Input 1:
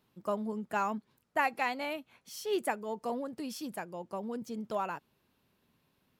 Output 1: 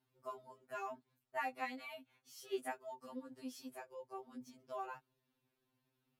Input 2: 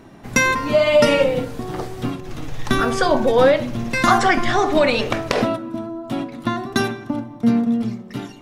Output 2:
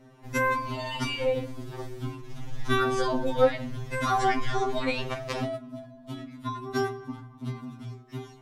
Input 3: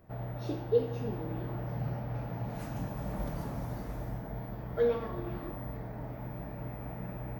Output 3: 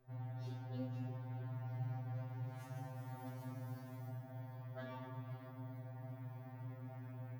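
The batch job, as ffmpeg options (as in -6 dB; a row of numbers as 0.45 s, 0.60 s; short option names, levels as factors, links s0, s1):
-af "afftfilt=real='re*2.45*eq(mod(b,6),0)':imag='im*2.45*eq(mod(b,6),0)':win_size=2048:overlap=0.75,volume=0.376"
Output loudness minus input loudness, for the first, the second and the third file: -11.0 LU, -10.5 LU, -11.0 LU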